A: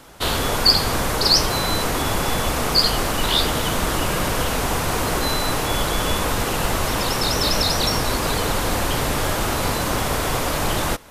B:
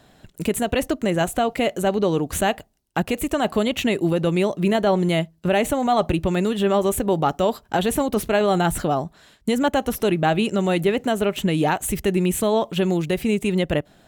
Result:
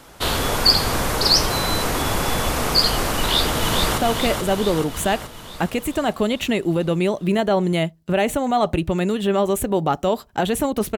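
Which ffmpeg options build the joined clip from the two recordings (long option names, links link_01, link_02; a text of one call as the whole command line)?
ffmpeg -i cue0.wav -i cue1.wav -filter_complex "[0:a]apad=whole_dur=10.97,atrim=end=10.97,atrim=end=3.982[link_01];[1:a]atrim=start=1.338:end=8.33[link_02];[link_01][link_02]acrossfade=duration=0.004:curve1=hsin:curve2=hsin,asplit=2[link_03][link_04];[link_04]afade=type=in:start_time=3.18:duration=0.01,afade=type=out:start_time=3.98:duration=0.01,aecho=0:1:430|860|1290|1720|2150|2580|3010|3440|3870:0.595662|0.357397|0.214438|0.128663|0.0771978|0.0463187|0.0277912|0.0166747|0.0100048[link_05];[link_03][link_05]amix=inputs=2:normalize=0" out.wav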